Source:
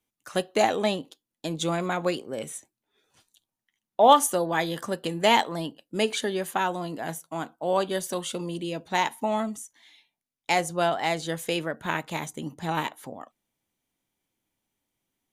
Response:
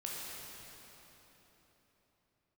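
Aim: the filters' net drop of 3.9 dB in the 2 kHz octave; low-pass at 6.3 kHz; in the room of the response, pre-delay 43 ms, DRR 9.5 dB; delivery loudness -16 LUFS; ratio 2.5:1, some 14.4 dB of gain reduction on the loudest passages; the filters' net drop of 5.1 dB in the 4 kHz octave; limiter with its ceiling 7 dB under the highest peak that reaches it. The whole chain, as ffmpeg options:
-filter_complex "[0:a]lowpass=6300,equalizer=f=2000:t=o:g=-3.5,equalizer=f=4000:t=o:g=-5,acompressor=threshold=0.02:ratio=2.5,alimiter=level_in=1.19:limit=0.0631:level=0:latency=1,volume=0.841,asplit=2[s0][s1];[1:a]atrim=start_sample=2205,adelay=43[s2];[s1][s2]afir=irnorm=-1:irlink=0,volume=0.282[s3];[s0][s3]amix=inputs=2:normalize=0,volume=11.9"

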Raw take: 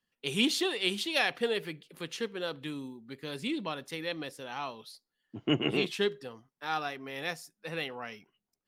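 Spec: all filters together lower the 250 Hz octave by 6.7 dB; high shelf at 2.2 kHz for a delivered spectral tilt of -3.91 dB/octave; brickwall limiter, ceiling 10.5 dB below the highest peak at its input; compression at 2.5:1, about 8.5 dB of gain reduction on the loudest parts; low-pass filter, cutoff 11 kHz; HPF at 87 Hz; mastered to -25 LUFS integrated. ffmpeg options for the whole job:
-af "highpass=87,lowpass=11000,equalizer=f=250:t=o:g=-9,highshelf=f=2200:g=-6,acompressor=threshold=0.01:ratio=2.5,volume=12.6,alimiter=limit=0.224:level=0:latency=1"

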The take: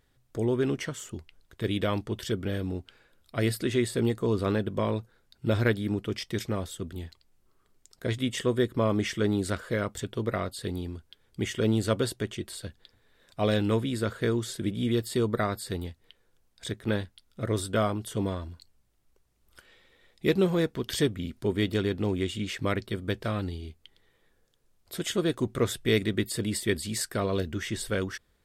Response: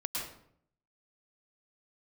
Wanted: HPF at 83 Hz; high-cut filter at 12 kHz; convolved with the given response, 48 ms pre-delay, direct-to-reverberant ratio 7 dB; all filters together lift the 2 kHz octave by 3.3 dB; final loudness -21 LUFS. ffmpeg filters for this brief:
-filter_complex "[0:a]highpass=83,lowpass=12000,equalizer=f=2000:t=o:g=4,asplit=2[s0][s1];[1:a]atrim=start_sample=2205,adelay=48[s2];[s1][s2]afir=irnorm=-1:irlink=0,volume=0.299[s3];[s0][s3]amix=inputs=2:normalize=0,volume=2.37"

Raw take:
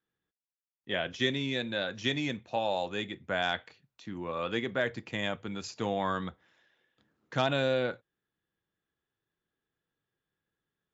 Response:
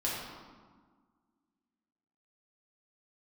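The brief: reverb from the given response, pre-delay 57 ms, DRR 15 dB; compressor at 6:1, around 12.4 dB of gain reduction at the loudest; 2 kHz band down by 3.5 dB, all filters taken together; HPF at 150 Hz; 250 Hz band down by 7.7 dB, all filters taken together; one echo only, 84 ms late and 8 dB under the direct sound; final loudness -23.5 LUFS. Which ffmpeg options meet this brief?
-filter_complex "[0:a]highpass=150,equalizer=f=250:t=o:g=-9,equalizer=f=2000:t=o:g=-4.5,acompressor=threshold=0.01:ratio=6,aecho=1:1:84:0.398,asplit=2[s0][s1];[1:a]atrim=start_sample=2205,adelay=57[s2];[s1][s2]afir=irnorm=-1:irlink=0,volume=0.0891[s3];[s0][s3]amix=inputs=2:normalize=0,volume=10"

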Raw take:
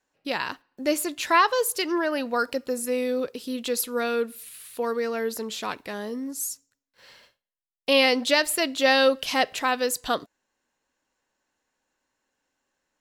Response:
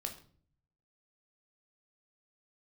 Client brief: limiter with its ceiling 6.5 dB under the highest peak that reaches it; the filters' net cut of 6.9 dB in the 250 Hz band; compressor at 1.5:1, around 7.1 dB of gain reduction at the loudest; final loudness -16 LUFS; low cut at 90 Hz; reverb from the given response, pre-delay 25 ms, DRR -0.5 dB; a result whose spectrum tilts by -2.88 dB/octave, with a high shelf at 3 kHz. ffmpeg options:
-filter_complex "[0:a]highpass=90,equalizer=f=250:t=o:g=-8,highshelf=f=3000:g=-8.5,acompressor=threshold=0.0141:ratio=1.5,alimiter=limit=0.0708:level=0:latency=1,asplit=2[s0][s1];[1:a]atrim=start_sample=2205,adelay=25[s2];[s1][s2]afir=irnorm=-1:irlink=0,volume=1.19[s3];[s0][s3]amix=inputs=2:normalize=0,volume=6.31"

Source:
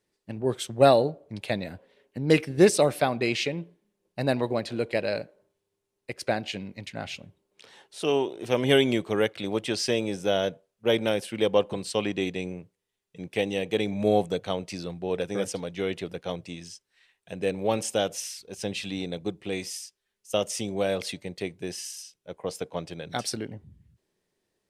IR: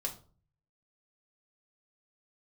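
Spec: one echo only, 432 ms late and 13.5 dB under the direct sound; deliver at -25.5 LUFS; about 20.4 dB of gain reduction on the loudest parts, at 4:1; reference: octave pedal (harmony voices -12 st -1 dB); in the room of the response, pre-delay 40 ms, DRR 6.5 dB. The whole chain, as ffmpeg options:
-filter_complex "[0:a]acompressor=threshold=0.0126:ratio=4,aecho=1:1:432:0.211,asplit=2[s0][s1];[1:a]atrim=start_sample=2205,adelay=40[s2];[s1][s2]afir=irnorm=-1:irlink=0,volume=0.398[s3];[s0][s3]amix=inputs=2:normalize=0,asplit=2[s4][s5];[s5]asetrate=22050,aresample=44100,atempo=2,volume=0.891[s6];[s4][s6]amix=inputs=2:normalize=0,volume=4.22"

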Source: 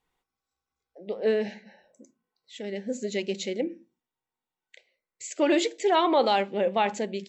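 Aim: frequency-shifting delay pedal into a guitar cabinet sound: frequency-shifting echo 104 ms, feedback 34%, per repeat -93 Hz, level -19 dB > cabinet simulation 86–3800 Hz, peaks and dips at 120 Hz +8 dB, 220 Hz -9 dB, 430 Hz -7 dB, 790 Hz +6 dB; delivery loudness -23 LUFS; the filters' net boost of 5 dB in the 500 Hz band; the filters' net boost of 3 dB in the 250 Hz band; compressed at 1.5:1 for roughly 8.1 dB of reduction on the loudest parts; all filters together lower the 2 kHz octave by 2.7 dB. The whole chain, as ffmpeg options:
-filter_complex "[0:a]equalizer=f=250:t=o:g=4.5,equalizer=f=500:t=o:g=8,equalizer=f=2000:t=o:g=-4,acompressor=threshold=0.0178:ratio=1.5,asplit=4[s0][s1][s2][s3];[s1]adelay=104,afreqshift=-93,volume=0.112[s4];[s2]adelay=208,afreqshift=-186,volume=0.038[s5];[s3]adelay=312,afreqshift=-279,volume=0.013[s6];[s0][s4][s5][s6]amix=inputs=4:normalize=0,highpass=86,equalizer=f=120:t=q:w=4:g=8,equalizer=f=220:t=q:w=4:g=-9,equalizer=f=430:t=q:w=4:g=-7,equalizer=f=790:t=q:w=4:g=6,lowpass=f=3800:w=0.5412,lowpass=f=3800:w=1.3066,volume=2"

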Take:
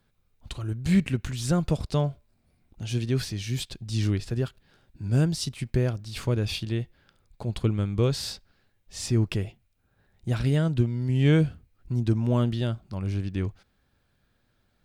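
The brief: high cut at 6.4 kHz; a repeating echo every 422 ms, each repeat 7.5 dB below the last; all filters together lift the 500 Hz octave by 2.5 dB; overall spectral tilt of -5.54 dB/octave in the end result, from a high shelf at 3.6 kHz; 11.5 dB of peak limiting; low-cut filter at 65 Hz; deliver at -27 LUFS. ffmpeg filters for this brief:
-af "highpass=65,lowpass=6400,equalizer=f=500:t=o:g=3,highshelf=f=3600:g=6.5,alimiter=limit=0.0944:level=0:latency=1,aecho=1:1:422|844|1266|1688|2110:0.422|0.177|0.0744|0.0312|0.0131,volume=1.58"

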